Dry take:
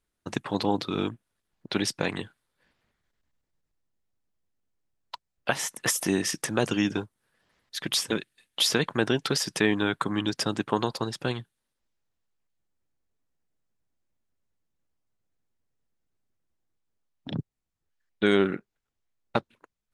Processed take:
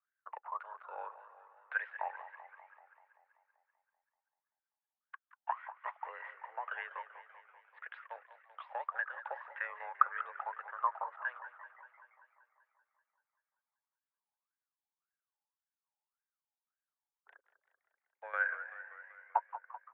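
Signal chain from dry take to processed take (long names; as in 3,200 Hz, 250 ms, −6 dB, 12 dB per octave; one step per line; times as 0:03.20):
shaped tremolo saw down 1.2 Hz, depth 70%
LFO wah 1.8 Hz 690–1,500 Hz, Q 12
on a send: echo with shifted repeats 172 ms, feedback 63%, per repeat +110 Hz, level −20 dB
on the sum: single-sideband voice off tune +130 Hz 390–2,500 Hz
feedback echo with a swinging delay time 193 ms, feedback 64%, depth 120 cents, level −13.5 dB
level +8.5 dB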